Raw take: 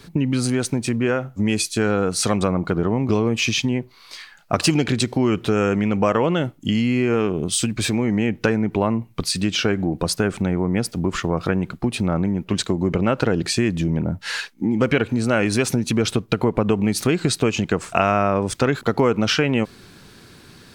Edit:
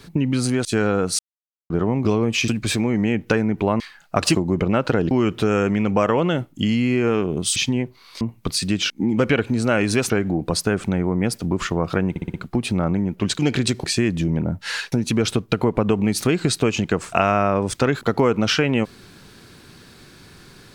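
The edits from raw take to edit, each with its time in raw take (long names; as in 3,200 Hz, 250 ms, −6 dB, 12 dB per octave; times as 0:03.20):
0:00.65–0:01.69: remove
0:02.23–0:02.74: silence
0:03.52–0:04.17: swap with 0:07.62–0:08.94
0:04.72–0:05.17: swap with 0:12.68–0:13.44
0:11.63: stutter 0.06 s, 5 plays
0:14.52–0:15.72: move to 0:09.63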